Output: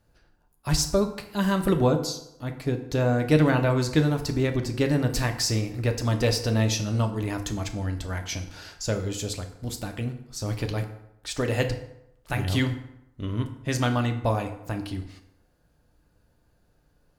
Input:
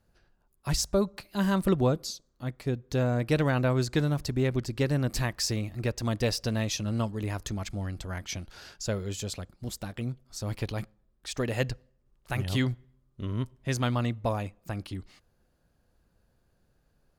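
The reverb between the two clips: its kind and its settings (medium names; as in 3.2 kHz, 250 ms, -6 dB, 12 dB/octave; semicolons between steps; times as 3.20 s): FDN reverb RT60 0.83 s, low-frequency decay 0.9×, high-frequency decay 0.65×, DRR 5 dB; trim +3 dB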